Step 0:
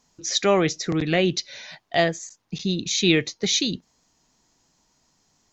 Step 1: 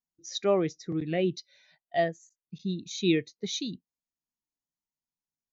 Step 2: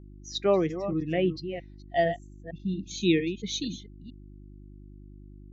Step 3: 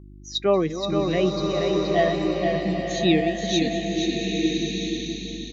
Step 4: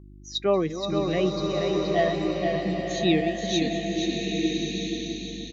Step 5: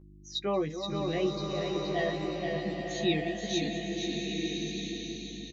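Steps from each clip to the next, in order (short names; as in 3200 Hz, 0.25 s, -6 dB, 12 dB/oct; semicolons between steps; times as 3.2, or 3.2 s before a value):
spectral expander 1.5:1; gain -7.5 dB
reverse delay 0.228 s, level -8.5 dB; spectral noise reduction 15 dB; buzz 50 Hz, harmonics 7, -49 dBFS -5 dB/oct; gain +1.5 dB
small resonant body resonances 1100/3800 Hz, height 7 dB; on a send: feedback echo 0.476 s, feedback 31%, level -5 dB; on the sum: bloom reverb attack 1.31 s, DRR 1 dB; gain +3 dB
feedback echo 0.61 s, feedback 43%, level -16 dB; gain -2.5 dB
doubler 14 ms -3.5 dB; gain -6.5 dB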